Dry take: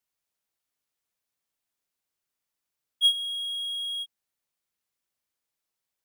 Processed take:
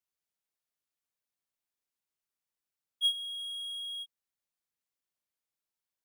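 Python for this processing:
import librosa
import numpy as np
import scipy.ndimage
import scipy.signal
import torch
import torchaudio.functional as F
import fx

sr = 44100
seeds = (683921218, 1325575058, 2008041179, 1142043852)

y = fx.graphic_eq(x, sr, hz=(2000, 4000, 8000), db=(10, -5, 4), at=(3.39, 3.8))
y = y * 10.0 ** (-7.0 / 20.0)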